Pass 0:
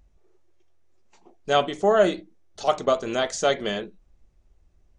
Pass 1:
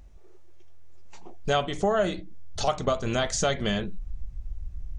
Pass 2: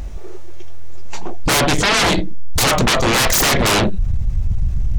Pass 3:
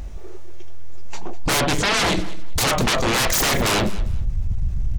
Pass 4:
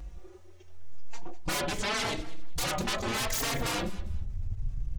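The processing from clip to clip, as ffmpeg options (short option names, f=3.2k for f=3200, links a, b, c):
-af "asubboost=boost=9:cutoff=130,acompressor=threshold=-33dB:ratio=3,volume=8dB"
-af "aeval=exprs='0.266*sin(PI/2*8.91*val(0)/0.266)':c=same"
-af "aecho=1:1:200|400:0.141|0.0325,volume=-4.5dB"
-filter_complex "[0:a]asplit=2[a][b];[b]adelay=3.8,afreqshift=0.81[c];[a][c]amix=inputs=2:normalize=1,volume=-8.5dB"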